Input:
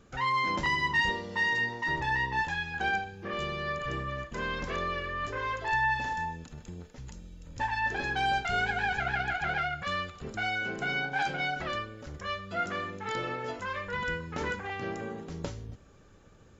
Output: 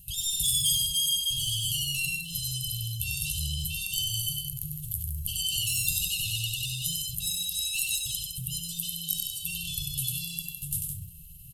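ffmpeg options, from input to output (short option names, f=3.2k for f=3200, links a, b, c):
-filter_complex "[0:a]lowshelf=f=92:g=8.5,bandreject=f=60:t=h:w=6,bandreject=f=120:t=h:w=6,bandreject=f=180:t=h:w=6,bandreject=f=240:t=h:w=6,bandreject=f=300:t=h:w=6,bandreject=f=360:t=h:w=6,bandreject=f=420:t=h:w=6,bandreject=f=480:t=h:w=6,aecho=1:1:137|230.3:0.631|0.447,acrossover=split=3100[a][b];[a]asoftclip=type=tanh:threshold=-27.5dB[c];[b]aexciter=amount=7.1:drive=8.7:freq=4.7k[d];[c][d]amix=inputs=2:normalize=0,atempo=0.83,afftfilt=real='re*(1-between(b*sr/4096,100,1500))':imag='im*(1-between(b*sr/4096,100,1500))':win_size=4096:overlap=0.75,asetrate=76440,aresample=44100,volume=2.5dB"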